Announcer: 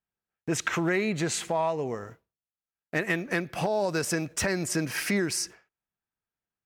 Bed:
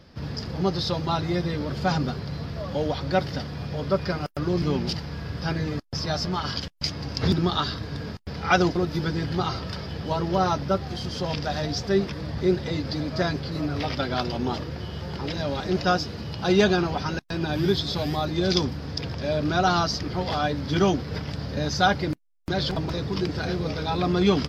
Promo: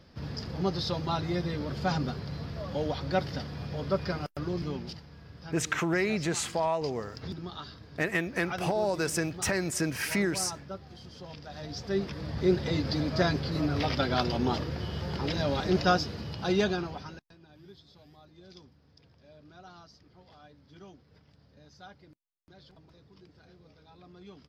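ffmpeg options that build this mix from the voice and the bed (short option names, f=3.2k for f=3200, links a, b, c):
-filter_complex "[0:a]adelay=5050,volume=-1.5dB[a];[1:a]volume=10.5dB,afade=t=out:st=4.17:d=0.89:silence=0.266073,afade=t=in:st=11.49:d=1.27:silence=0.16788,afade=t=out:st=15.72:d=1.64:silence=0.0375837[b];[a][b]amix=inputs=2:normalize=0"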